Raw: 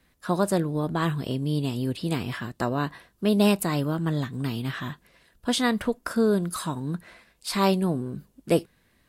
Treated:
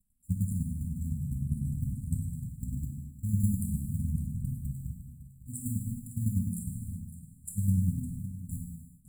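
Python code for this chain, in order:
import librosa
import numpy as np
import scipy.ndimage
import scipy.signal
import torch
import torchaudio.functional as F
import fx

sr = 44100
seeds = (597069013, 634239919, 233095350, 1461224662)

p1 = fx.cycle_switch(x, sr, every=2, mode='muted')
p2 = fx.peak_eq(p1, sr, hz=880.0, db=6.0, octaves=1.5)
p3 = p2 + 0.49 * np.pad(p2, (int(1.8 * sr / 1000.0), 0))[:len(p2)]
p4 = fx.env_flanger(p3, sr, rest_ms=4.2, full_db=-19.0)
p5 = fx.chopper(p4, sr, hz=9.9, depth_pct=65, duty_pct=20)
p6 = fx.brickwall_bandstop(p5, sr, low_hz=270.0, high_hz=7100.0)
p7 = p6 + fx.echo_single(p6, sr, ms=557, db=-14.0, dry=0)
p8 = fx.rev_gated(p7, sr, seeds[0], gate_ms=450, shape='falling', drr_db=0.5)
y = p8 * 10.0 ** (2.5 / 20.0)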